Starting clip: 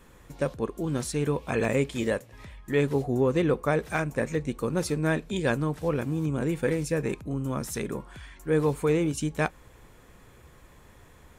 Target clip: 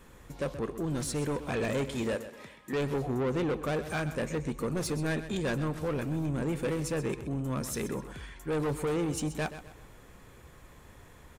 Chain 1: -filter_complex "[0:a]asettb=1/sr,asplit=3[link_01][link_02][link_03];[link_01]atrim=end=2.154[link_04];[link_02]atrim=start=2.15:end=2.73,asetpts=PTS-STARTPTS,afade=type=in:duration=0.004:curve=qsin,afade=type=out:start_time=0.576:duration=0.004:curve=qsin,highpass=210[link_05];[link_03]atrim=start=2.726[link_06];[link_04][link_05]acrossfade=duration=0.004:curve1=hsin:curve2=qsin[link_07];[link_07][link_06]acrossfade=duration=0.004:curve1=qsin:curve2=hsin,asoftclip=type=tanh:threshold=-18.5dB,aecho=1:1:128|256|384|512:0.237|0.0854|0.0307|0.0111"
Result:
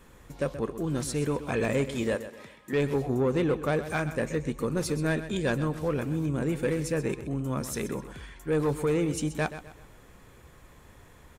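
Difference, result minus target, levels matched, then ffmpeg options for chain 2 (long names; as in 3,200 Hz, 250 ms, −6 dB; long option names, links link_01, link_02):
soft clipping: distortion −8 dB
-filter_complex "[0:a]asettb=1/sr,asplit=3[link_01][link_02][link_03];[link_01]atrim=end=2.154[link_04];[link_02]atrim=start=2.15:end=2.73,asetpts=PTS-STARTPTS,afade=type=in:duration=0.004:curve=qsin,afade=type=out:start_time=0.576:duration=0.004:curve=qsin,highpass=210[link_05];[link_03]atrim=start=2.726[link_06];[link_04][link_05]acrossfade=duration=0.004:curve1=hsin:curve2=qsin[link_07];[link_07][link_06]acrossfade=duration=0.004:curve1=qsin:curve2=hsin,asoftclip=type=tanh:threshold=-26.5dB,aecho=1:1:128|256|384|512:0.237|0.0854|0.0307|0.0111"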